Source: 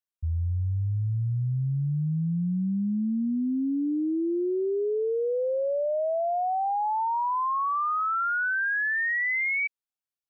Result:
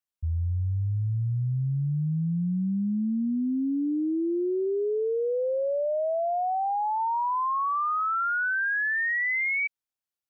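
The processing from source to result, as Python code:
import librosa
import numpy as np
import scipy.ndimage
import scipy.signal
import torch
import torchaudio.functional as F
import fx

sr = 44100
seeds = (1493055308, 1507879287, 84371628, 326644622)

y = fx.lowpass(x, sr, hz=1500.0, slope=12, at=(4.64, 6.98), fade=0.02)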